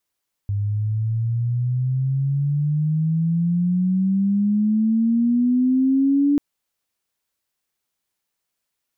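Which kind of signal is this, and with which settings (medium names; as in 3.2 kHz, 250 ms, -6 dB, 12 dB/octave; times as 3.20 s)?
sweep logarithmic 100 Hz -> 290 Hz -19.5 dBFS -> -14 dBFS 5.89 s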